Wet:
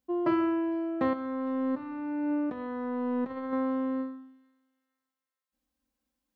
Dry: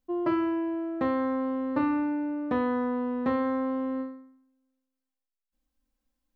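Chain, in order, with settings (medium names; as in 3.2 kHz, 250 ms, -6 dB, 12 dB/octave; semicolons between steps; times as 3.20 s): high-pass 69 Hz; 1.13–3.53 s: compressor with a negative ratio -31 dBFS, ratio -0.5; feedback echo behind a high-pass 456 ms, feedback 33%, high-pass 3.4 kHz, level -17 dB; reverberation RT60 0.35 s, pre-delay 95 ms, DRR 18.5 dB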